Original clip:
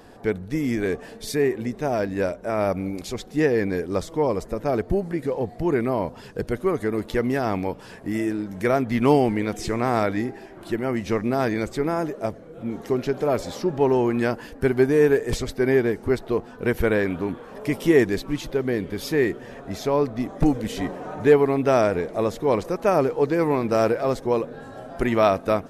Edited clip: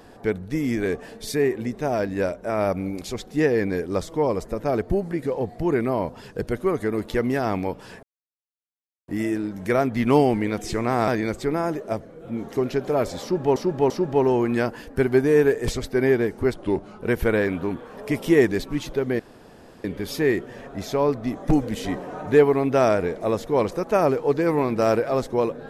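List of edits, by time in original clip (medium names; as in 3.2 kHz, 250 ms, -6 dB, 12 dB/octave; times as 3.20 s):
8.03 s: insert silence 1.05 s
10.03–11.41 s: delete
13.55–13.89 s: loop, 3 plays
16.19–16.60 s: speed 85%
18.77 s: insert room tone 0.65 s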